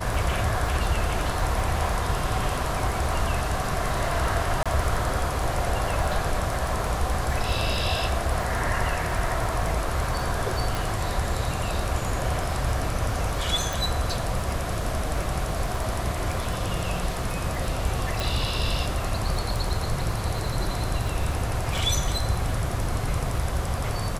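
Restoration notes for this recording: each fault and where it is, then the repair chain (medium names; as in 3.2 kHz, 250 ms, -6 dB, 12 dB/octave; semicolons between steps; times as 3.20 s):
crackle 28 per s -32 dBFS
4.63–4.66 s: dropout 26 ms
10.75 s: pop
13.73 s: pop
18.20 s: pop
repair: de-click; interpolate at 4.63 s, 26 ms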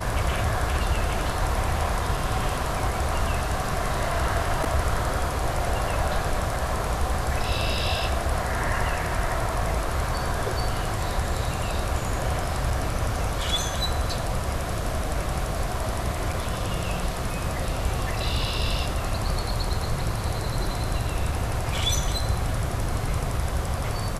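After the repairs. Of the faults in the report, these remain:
nothing left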